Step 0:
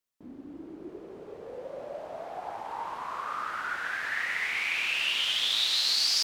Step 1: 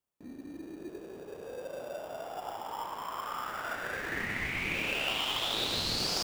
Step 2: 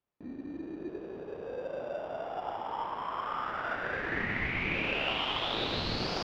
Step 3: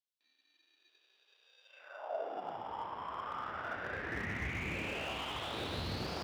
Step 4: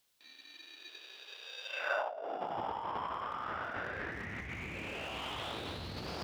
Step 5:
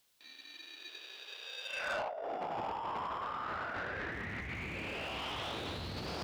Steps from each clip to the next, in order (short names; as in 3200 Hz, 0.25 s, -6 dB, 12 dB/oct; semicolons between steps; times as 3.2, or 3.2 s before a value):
bell 4800 Hz -4 dB 1 oct; in parallel at -5 dB: sample-rate reducer 2100 Hz, jitter 0%; on the sum: gain -4 dB
air absorption 270 m; gain +4 dB
high-pass sweep 3700 Hz -> 71 Hz, 1.65–2.73; slew limiter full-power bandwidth 54 Hz; gain -6 dB
negative-ratio compressor -50 dBFS, ratio -1; gain +10 dB
soft clip -34.5 dBFS, distortion -12 dB; gain +2.5 dB